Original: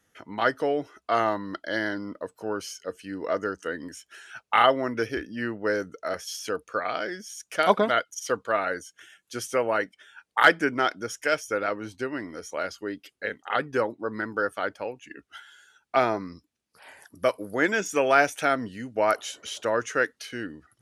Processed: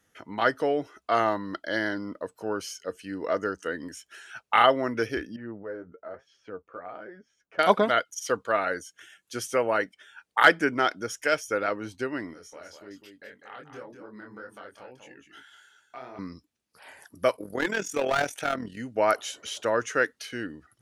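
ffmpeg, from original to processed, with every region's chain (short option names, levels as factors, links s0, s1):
-filter_complex "[0:a]asettb=1/sr,asplit=3[s0][s1][s2];[s0]atrim=end=5.364[s3];[s1]atrim=start=5.36:end=7.59,asetpts=PTS-STARTPTS,afade=t=in:d=0.004:c=qsin,afade=t=out:st=2.226:d=0.004:c=qsin,lowpass=1200,acompressor=threshold=0.00794:ratio=1.5:attack=3.2:release=140:knee=1:detection=peak,flanger=delay=6.6:depth=6.6:regen=33:speed=1.1:shape=triangular[s4];[s2]atrim=start=7.586[s5];[s3][s4]acrossfade=d=0.004:c1=hsin:c2=qsin[s6];[s6][s5]acrossfade=d=0.004:c1=qsin:c2=hsin,asettb=1/sr,asplit=3[s7][s8][s9];[s7]atrim=end=12.334[s10];[s8]atrim=start=12.33:end=16.19,asetpts=PTS-STARTPTS,afade=t=in:d=0.004:c=qsin,afade=t=out:st=3.856:d=0.004:c=qsin,acompressor=threshold=0.00708:ratio=2.5:attack=3.2:release=140:knee=1:detection=peak,flanger=delay=20:depth=5.1:speed=1.8,aecho=1:1:199:0.422,atrim=end_sample=170226[s11];[s9]atrim=start=16.186[s12];[s10][s11]acrossfade=d=0.004:c1=hsin:c2=qsin[s13];[s13][s12]acrossfade=d=0.004:c1=qsin:c2=hsin,asettb=1/sr,asplit=3[s14][s15][s16];[s14]atrim=end=17.364[s17];[s15]atrim=start=17.36:end=18.77,asetpts=PTS-STARTPTS,afade=t=in:d=0.004:c=qsin,afade=t=out:st=1.406:d=0.004:c=qsin,asoftclip=type=hard:threshold=0.126,tremolo=f=41:d=0.667[s18];[s16]atrim=start=18.766[s19];[s17][s18]acrossfade=d=0.004:c1=hsin:c2=qsin[s20];[s20][s19]acrossfade=d=0.004:c1=qsin:c2=hsin"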